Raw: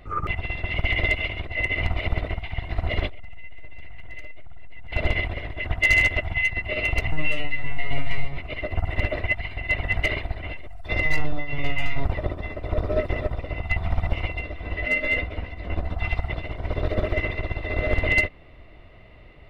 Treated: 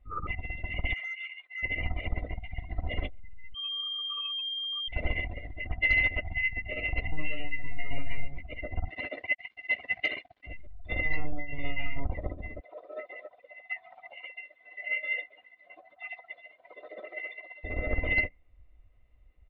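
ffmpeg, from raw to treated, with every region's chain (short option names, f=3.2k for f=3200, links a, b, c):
-filter_complex "[0:a]asettb=1/sr,asplit=3[a][b][c];[a]atrim=end=0.934[d];[b]atrim=start=0.93:end=1.63,asetpts=PTS-STARTPTS,afade=t=in:d=0.004:c=qsin,afade=t=out:st=0.696:d=0.004:c=qsin,highpass=1.1k,asoftclip=type=hard:threshold=-28dB[e];[c]atrim=start=1.626[f];[d][e]acrossfade=d=0.004:c1=hsin:c2=qsin[g];[g][f]acrossfade=d=0.004:c1=qsin:c2=hsin,asettb=1/sr,asplit=3[h][i][j];[h]atrim=end=3.544[k];[i]atrim=start=3.54:end=4.88,asetpts=PTS-STARTPTS,afade=t=in:d=0.004:c=qsin,afade=t=out:st=1.336:d=0.004:c=qsin,lowpass=f=2.7k:t=q:w=0.5098,lowpass=f=2.7k:t=q:w=0.6013,lowpass=f=2.7k:t=q:w=0.9,lowpass=f=2.7k:t=q:w=2.563,afreqshift=-3200,aecho=1:1:5:0.49,atrim=end_sample=59094,acontrast=25[l];[j]atrim=start=4.876[m];[k][l]acrossfade=d=0.004:c1=hsin:c2=qsin[n];[n][m]acrossfade=d=0.004:c1=qsin:c2=hsin,asettb=1/sr,asplit=3[o][p][q];[o]atrim=end=8.884[r];[p]atrim=start=8.88:end=10.47,asetpts=PTS-STARTPTS,afade=t=in:d=0.004:c=qsin,afade=t=out:st=1.586:d=0.004:c=qsin,highpass=220,aemphasis=mode=production:type=75kf,aeval=exprs='sgn(val(0))*max(abs(val(0))-0.0126,0)':c=same[s];[q]atrim=start=10.466[t];[r][s]acrossfade=d=0.004:c1=hsin:c2=qsin[u];[u][t]acrossfade=d=0.004:c1=qsin:c2=hsin,asettb=1/sr,asplit=3[v][w][x];[v]atrim=end=12.604[y];[w]atrim=start=12.6:end=17.64,asetpts=PTS-STARTPTS,afade=t=in:d=0.004:c=qsin,afade=t=out:st=5.036:d=0.004:c=qsin,highshelf=f=2.5k:g=7,flanger=delay=0.6:depth=7.9:regen=-66:speed=1.2:shape=sinusoidal,highpass=500[z];[x]atrim=start=17.636[aa];[y][z]acrossfade=d=0.004:c1=hsin:c2=qsin[ab];[ab][aa]acrossfade=d=0.004:c1=qsin:c2=hsin,afftdn=nr=18:nf=-33,lowpass=f=4k:w=0.5412,lowpass=f=4k:w=1.3066,aecho=1:1:3.9:0.35,volume=-8dB"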